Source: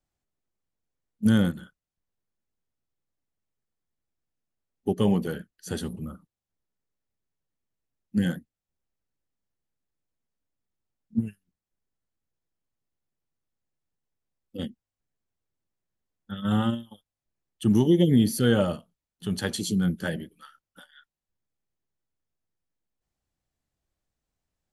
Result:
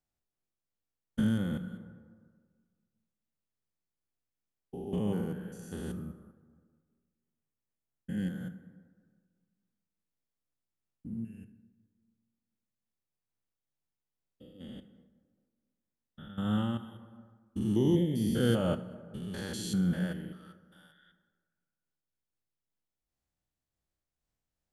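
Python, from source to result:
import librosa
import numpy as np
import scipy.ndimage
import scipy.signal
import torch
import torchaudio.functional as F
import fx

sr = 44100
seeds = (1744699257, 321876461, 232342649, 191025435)

y = fx.spec_steps(x, sr, hold_ms=200)
y = fx.peak_eq(y, sr, hz=4200.0, db=-9.5, octaves=0.61, at=(4.98, 8.19))
y = fx.rev_plate(y, sr, seeds[0], rt60_s=1.7, hf_ratio=0.5, predelay_ms=0, drr_db=10.0)
y = fx.am_noise(y, sr, seeds[1], hz=5.7, depth_pct=60)
y = y * librosa.db_to_amplitude(-1.5)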